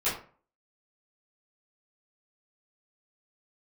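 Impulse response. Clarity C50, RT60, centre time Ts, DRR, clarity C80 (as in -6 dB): 6.0 dB, 0.45 s, 35 ms, -13.0 dB, 11.0 dB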